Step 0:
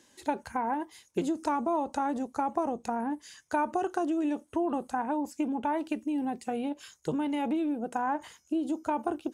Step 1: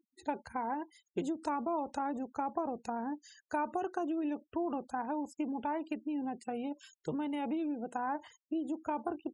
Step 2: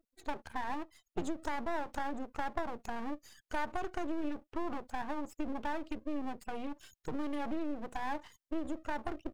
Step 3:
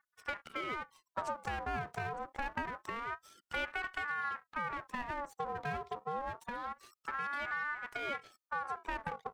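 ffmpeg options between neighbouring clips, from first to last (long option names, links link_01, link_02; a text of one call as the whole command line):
ffmpeg -i in.wav -af "afftfilt=real='re*gte(hypot(re,im),0.00447)':imag='im*gte(hypot(re,im),0.00447)':win_size=1024:overlap=0.75,volume=-5.5dB" out.wav
ffmpeg -i in.wav -af "aeval=exprs='max(val(0),0)':channel_layout=same,volume=3.5dB" out.wav
ffmpeg -i in.wav -af "aeval=exprs='val(0)*sin(2*PI*1100*n/s+1100*0.35/0.26*sin(2*PI*0.26*n/s))':channel_layout=same" out.wav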